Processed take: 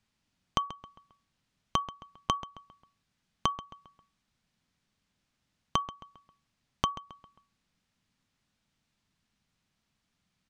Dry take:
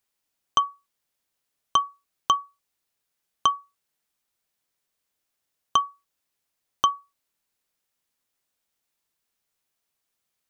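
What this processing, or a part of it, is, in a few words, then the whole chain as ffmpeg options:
jukebox: -filter_complex "[0:a]lowpass=5.3k,lowshelf=f=290:t=q:w=1.5:g=11,acompressor=threshold=-32dB:ratio=5,asplit=2[a][b];[b]adelay=134,lowpass=f=3.8k:p=1,volume=-14dB,asplit=2[c][d];[d]adelay=134,lowpass=f=3.8k:p=1,volume=0.44,asplit=2[e][f];[f]adelay=134,lowpass=f=3.8k:p=1,volume=0.44,asplit=2[g][h];[h]adelay=134,lowpass=f=3.8k:p=1,volume=0.44[i];[a][c][e][g][i]amix=inputs=5:normalize=0,volume=4.5dB"

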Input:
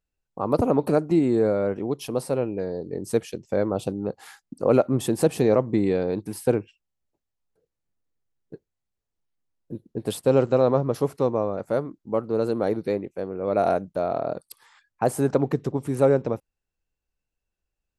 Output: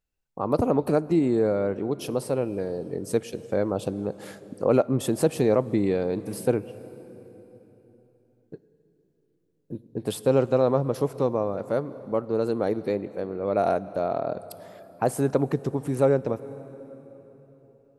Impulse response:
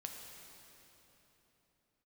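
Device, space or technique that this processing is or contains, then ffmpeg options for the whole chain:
ducked reverb: -filter_complex "[0:a]asplit=3[a][b][c];[1:a]atrim=start_sample=2205[d];[b][d]afir=irnorm=-1:irlink=0[e];[c]apad=whole_len=793061[f];[e][f]sidechaincompress=threshold=-26dB:ratio=4:attack=20:release=241,volume=-6dB[g];[a][g]amix=inputs=2:normalize=0,volume=-2.5dB"

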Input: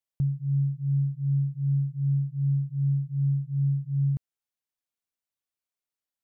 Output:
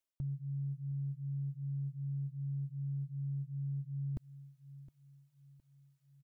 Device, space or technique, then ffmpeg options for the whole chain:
compression on the reversed sound: -af "aecho=1:1:3.2:0.57,aecho=1:1:714|1428|2142:0.0794|0.0342|0.0147,areverse,acompressor=threshold=-40dB:ratio=6,areverse,volume=3dB"

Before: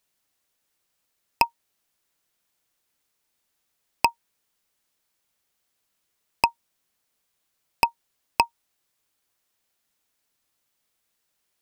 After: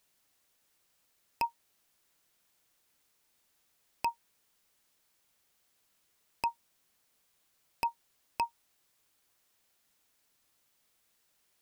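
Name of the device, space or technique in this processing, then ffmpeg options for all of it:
de-esser from a sidechain: -filter_complex "[0:a]asplit=2[a][b];[b]highpass=f=6.3k:p=1,apad=whole_len=512030[c];[a][c]sidechaincompress=threshold=-34dB:ratio=10:attack=1:release=25,volume=2.5dB"

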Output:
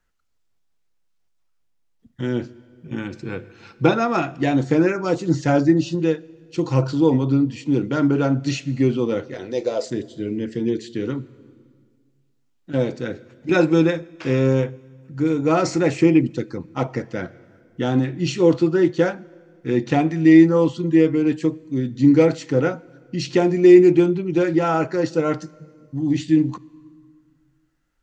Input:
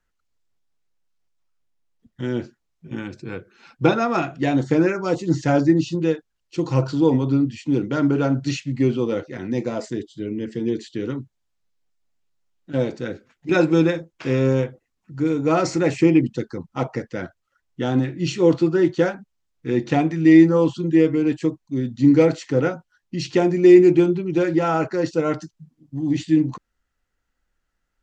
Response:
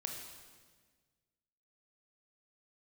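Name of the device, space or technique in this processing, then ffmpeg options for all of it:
ducked reverb: -filter_complex "[0:a]asettb=1/sr,asplit=3[a][b][c];[a]atrim=end=9.344[d];[b]atrim=start=9.34:end=9.9,asetpts=PTS-STARTPTS,afade=t=in:d=0.004:c=qsin,afade=t=out:st=0.556:d=0.004:c=qsin,equalizer=f=125:t=o:w=1:g=-11,equalizer=f=250:t=o:w=1:g=-11,equalizer=f=500:t=o:w=1:g=9,equalizer=f=1k:t=o:w=1:g=-4,equalizer=f=2k:t=o:w=1:g=-5,equalizer=f=4k:t=o:w=1:g=7[e];[c]atrim=start=9.896[f];[d][e]acrossfade=d=0.004:c1=hsin:c2=qsin[g];[g][f]acrossfade=d=0.004:c1=qsin:c2=hsin,asplit=3[h][i][j];[1:a]atrim=start_sample=2205[k];[i][k]afir=irnorm=-1:irlink=0[l];[j]apad=whole_len=1236070[m];[l][m]sidechaincompress=threshold=-26dB:ratio=5:attack=12:release=1240,volume=-6.5dB[n];[h][n]amix=inputs=2:normalize=0"

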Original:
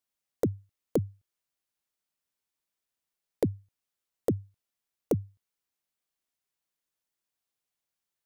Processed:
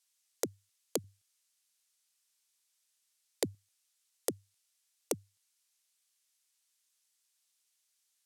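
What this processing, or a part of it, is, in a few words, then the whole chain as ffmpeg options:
piezo pickup straight into a mixer: -filter_complex "[0:a]asettb=1/sr,asplit=3[a][b][c];[a]atrim=end=1.044[d];[b]atrim=start=1.04:end=3.55,asetpts=PTS-STARTPTS,afade=t=in:d=0.004:c=qsin,afade=t=out:st=2.506:d=0.004:c=qsin,lowshelf=f=130:g=11[e];[c]atrim=start=3.546[f];[d][e]acrossfade=d=0.004:c1=hsin:c2=qsin[g];[g][f]acrossfade=d=0.004:c1=qsin:c2=hsin,lowpass=8.4k,aderivative,volume=16dB"

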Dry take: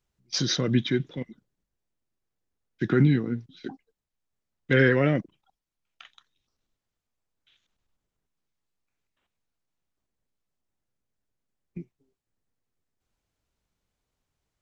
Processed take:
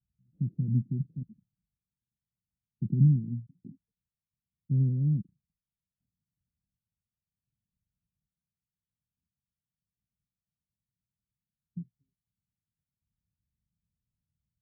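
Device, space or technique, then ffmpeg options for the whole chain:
the neighbour's flat through the wall: -af "highpass=60,lowpass=f=180:w=0.5412,lowpass=f=180:w=1.3066,equalizer=f=190:t=o:w=0.77:g=3.5"

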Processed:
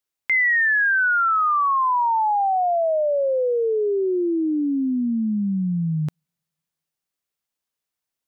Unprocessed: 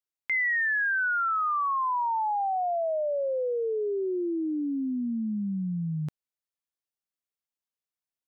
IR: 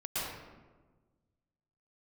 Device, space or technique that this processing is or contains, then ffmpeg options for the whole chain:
keyed gated reverb: -filter_complex "[0:a]asplit=3[a][b][c];[1:a]atrim=start_sample=2205[d];[b][d]afir=irnorm=-1:irlink=0[e];[c]apad=whole_len=364954[f];[e][f]sidechaingate=range=-51dB:threshold=-22dB:ratio=16:detection=peak,volume=-12dB[g];[a][g]amix=inputs=2:normalize=0,volume=7.5dB"

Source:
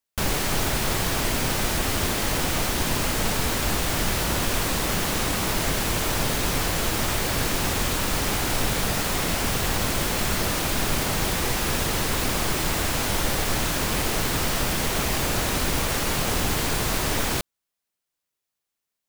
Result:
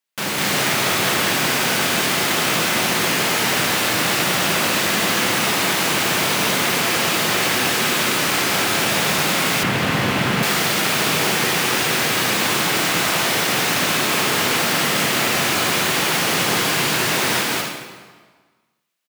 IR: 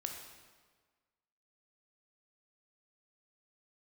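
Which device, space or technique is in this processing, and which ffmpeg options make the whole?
stadium PA: -filter_complex "[0:a]highpass=f=140:w=0.5412,highpass=f=140:w=1.3066,equalizer=f=2.4k:t=o:w=2:g=5.5,aecho=1:1:201.2|274.1:1|0.501[a];[1:a]atrim=start_sample=2205[b];[a][b]afir=irnorm=-1:irlink=0,asettb=1/sr,asplit=3[c][d][e];[c]atrim=end=9.634[f];[d]atrim=start=9.63:end=10.43,asetpts=PTS-STARTPTS,afade=t=in:d=0.004:c=qsin,afade=t=out:st=0.796:d=0.004:c=qsin,bass=f=250:g=9,treble=f=4k:g=-10[g];[e]atrim=start=10.426[h];[f][g]acrossfade=d=0.004:c1=hsin:c2=qsin[i];[i][h]acrossfade=d=0.004:c1=qsin:c2=hsin,volume=2dB"

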